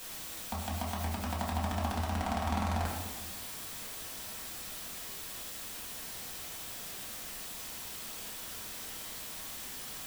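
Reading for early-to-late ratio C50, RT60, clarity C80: 3.0 dB, 1.3 s, 5.0 dB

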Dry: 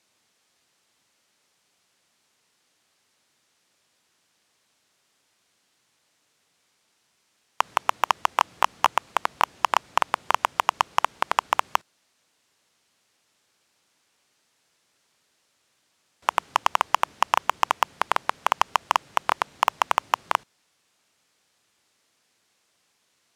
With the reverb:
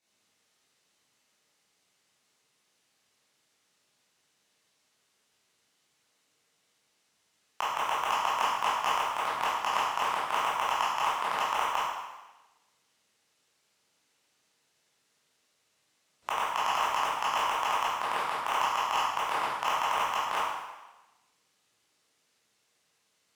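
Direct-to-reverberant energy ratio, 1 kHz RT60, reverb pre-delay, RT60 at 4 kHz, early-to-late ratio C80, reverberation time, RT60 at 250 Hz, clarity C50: -10.0 dB, 1.1 s, 15 ms, 1.1 s, 2.0 dB, 1.1 s, 1.0 s, -1.5 dB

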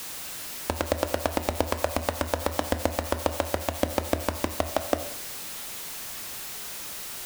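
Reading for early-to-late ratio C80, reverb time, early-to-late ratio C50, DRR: 14.5 dB, 0.80 s, 12.0 dB, 9.0 dB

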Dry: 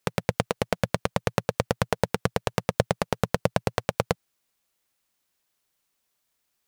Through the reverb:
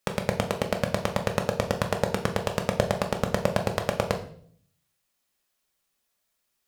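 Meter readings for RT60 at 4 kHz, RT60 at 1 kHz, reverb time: 0.50 s, 0.50 s, 0.55 s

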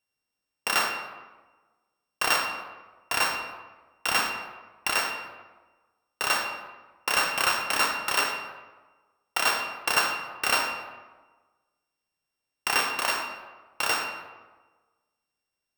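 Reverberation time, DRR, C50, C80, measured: 1.3 s, 2.5 dB, 5.0 dB, 7.0 dB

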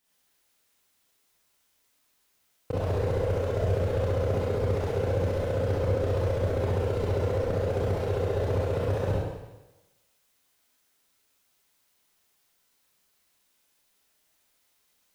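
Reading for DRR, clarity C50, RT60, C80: -8.0 dB, -2.5 dB, 1.1 s, 1.0 dB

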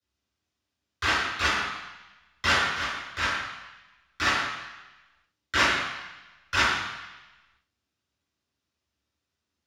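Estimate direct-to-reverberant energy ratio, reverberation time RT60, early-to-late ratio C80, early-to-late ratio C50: -13.0 dB, 1.0 s, 3.0 dB, 1.0 dB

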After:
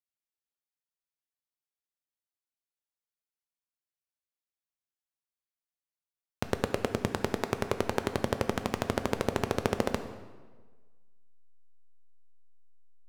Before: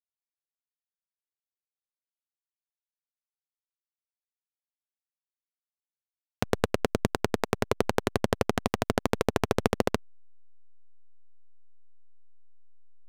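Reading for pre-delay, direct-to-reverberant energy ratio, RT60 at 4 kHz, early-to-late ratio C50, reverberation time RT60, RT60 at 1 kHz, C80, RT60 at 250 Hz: 3 ms, 8.0 dB, 1.0 s, 10.5 dB, 1.4 s, 1.4 s, 12.0 dB, 1.4 s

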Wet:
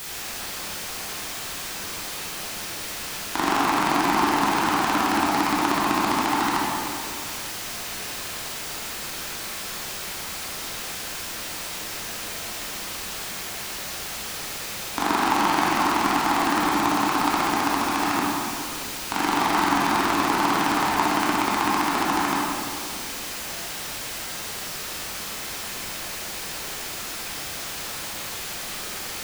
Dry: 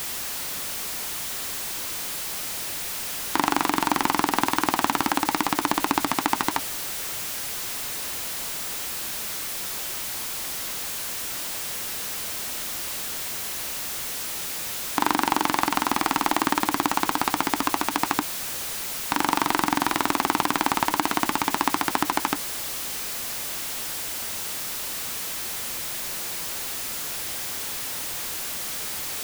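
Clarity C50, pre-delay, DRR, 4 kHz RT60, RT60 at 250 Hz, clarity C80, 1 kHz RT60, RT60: -3.0 dB, 15 ms, -6.5 dB, 1.3 s, 2.4 s, 0.0 dB, 2.1 s, 2.1 s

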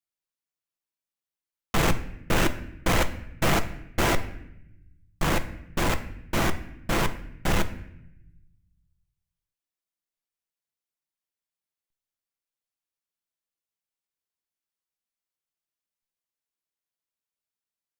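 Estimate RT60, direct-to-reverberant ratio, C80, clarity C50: 0.80 s, 7.5 dB, 15.5 dB, 13.5 dB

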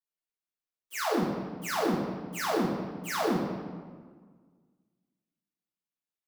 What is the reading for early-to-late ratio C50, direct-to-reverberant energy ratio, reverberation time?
1.0 dB, -8.5 dB, 1.6 s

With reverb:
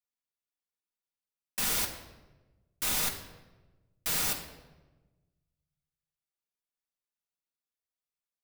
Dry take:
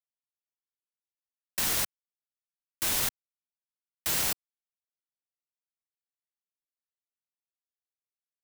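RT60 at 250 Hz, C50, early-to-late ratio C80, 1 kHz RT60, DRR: 1.5 s, 8.5 dB, 10.5 dB, 1.0 s, 0.0 dB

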